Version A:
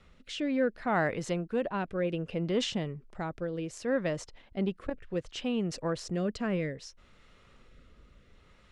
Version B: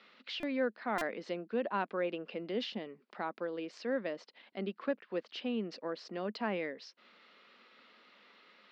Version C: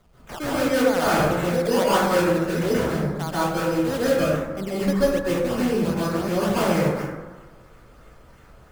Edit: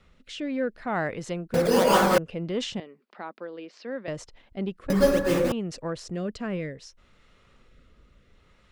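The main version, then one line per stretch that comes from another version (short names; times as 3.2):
A
1.54–2.18 from C
2.8–4.08 from B
4.9–5.52 from C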